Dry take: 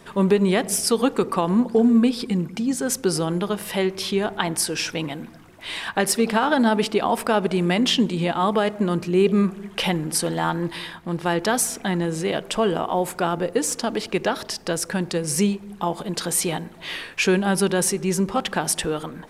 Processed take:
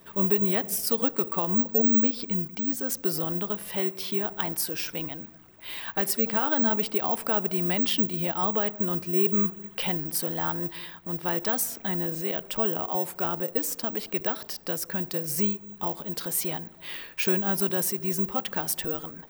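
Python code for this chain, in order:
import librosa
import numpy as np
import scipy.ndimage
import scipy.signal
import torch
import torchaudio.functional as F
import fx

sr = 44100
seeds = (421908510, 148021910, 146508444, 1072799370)

y = (np.kron(x[::2], np.eye(2)[0]) * 2)[:len(x)]
y = y * 10.0 ** (-8.5 / 20.0)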